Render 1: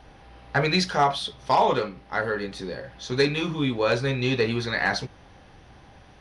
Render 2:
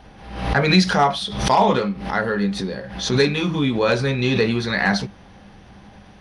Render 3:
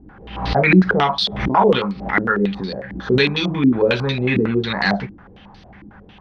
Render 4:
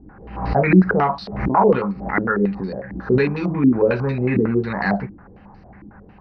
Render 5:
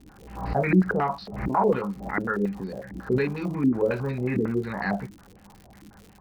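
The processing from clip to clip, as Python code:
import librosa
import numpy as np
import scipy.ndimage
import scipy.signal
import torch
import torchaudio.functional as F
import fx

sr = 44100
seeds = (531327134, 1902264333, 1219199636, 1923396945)

y1 = fx.peak_eq(x, sr, hz=200.0, db=14.5, octaves=0.2)
y1 = fx.pre_swell(y1, sr, db_per_s=72.0)
y1 = F.gain(torch.from_numpy(y1), 3.5).numpy()
y2 = fx.peak_eq(y1, sr, hz=600.0, db=-4.5, octaves=0.77)
y2 = fx.filter_held_lowpass(y2, sr, hz=11.0, low_hz=310.0, high_hz=4500.0)
y3 = np.convolve(y2, np.full(13, 1.0 / 13))[:len(y2)]
y4 = fx.dmg_crackle(y3, sr, seeds[0], per_s=110.0, level_db=-31.0)
y4 = F.gain(torch.from_numpy(y4), -7.0).numpy()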